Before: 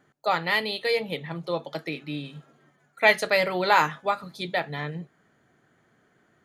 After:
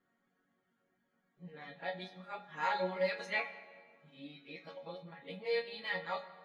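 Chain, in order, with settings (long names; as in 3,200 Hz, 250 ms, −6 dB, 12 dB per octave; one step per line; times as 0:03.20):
played backwards from end to start
low-pass filter 5,300 Hz 12 dB per octave
resonators tuned to a chord F#3 major, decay 0.35 s
reverb reduction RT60 0.5 s
convolution reverb RT60 1.7 s, pre-delay 27 ms, DRR 11 dB
level +3.5 dB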